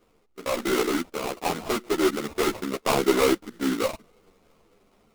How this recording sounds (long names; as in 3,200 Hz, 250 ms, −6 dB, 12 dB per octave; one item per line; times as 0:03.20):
sample-and-hold tremolo
aliases and images of a low sample rate 1,700 Hz, jitter 20%
a shimmering, thickened sound